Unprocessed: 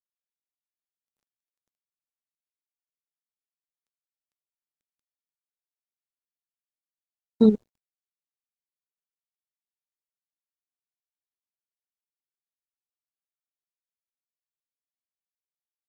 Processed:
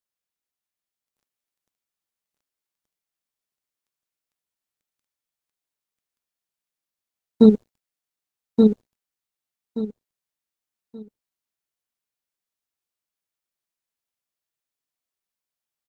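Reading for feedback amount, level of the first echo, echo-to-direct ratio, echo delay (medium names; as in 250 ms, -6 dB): 24%, -3.0 dB, -2.5 dB, 1177 ms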